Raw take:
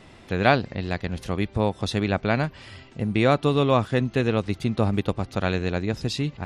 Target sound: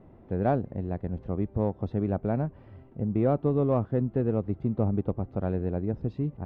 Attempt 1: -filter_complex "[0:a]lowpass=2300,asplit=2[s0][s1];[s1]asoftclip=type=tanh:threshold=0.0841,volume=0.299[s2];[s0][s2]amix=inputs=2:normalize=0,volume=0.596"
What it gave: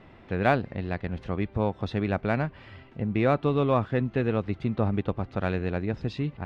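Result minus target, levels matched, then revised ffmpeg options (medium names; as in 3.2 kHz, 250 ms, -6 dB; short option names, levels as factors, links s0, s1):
2 kHz band +14.0 dB
-filter_complex "[0:a]lowpass=670,asplit=2[s0][s1];[s1]asoftclip=type=tanh:threshold=0.0841,volume=0.299[s2];[s0][s2]amix=inputs=2:normalize=0,volume=0.596"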